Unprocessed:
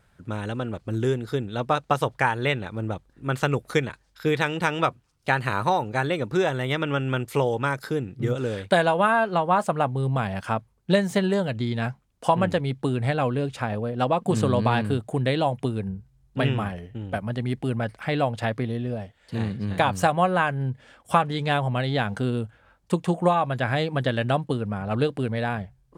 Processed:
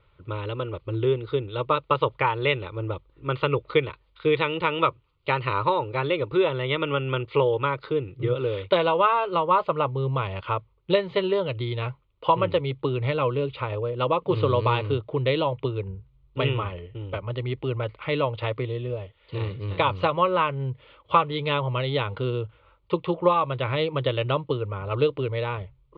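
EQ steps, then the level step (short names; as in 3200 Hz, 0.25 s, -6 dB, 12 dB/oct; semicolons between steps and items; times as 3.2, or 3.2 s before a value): Chebyshev low-pass 4900 Hz, order 6; fixed phaser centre 1100 Hz, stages 8; +4.0 dB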